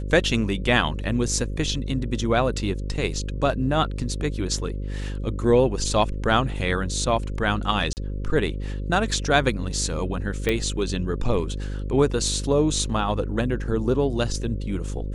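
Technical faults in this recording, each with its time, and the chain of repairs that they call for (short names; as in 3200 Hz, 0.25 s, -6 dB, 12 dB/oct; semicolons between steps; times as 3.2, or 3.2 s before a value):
buzz 50 Hz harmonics 11 -29 dBFS
7.93–7.97 gap 39 ms
10.49 pop -9 dBFS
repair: de-click; de-hum 50 Hz, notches 11; interpolate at 7.93, 39 ms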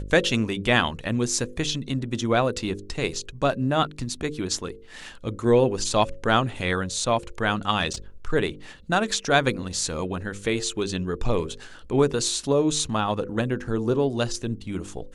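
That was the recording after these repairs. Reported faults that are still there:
none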